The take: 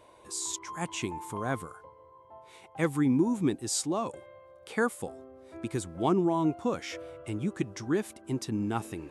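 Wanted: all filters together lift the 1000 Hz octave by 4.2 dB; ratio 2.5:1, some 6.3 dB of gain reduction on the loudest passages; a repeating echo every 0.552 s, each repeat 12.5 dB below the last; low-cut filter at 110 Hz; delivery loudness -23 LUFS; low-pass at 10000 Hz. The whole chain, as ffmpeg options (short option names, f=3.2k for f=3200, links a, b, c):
-af "highpass=110,lowpass=10k,equalizer=f=1k:t=o:g=5,acompressor=threshold=-29dB:ratio=2.5,aecho=1:1:552|1104|1656:0.237|0.0569|0.0137,volume=11.5dB"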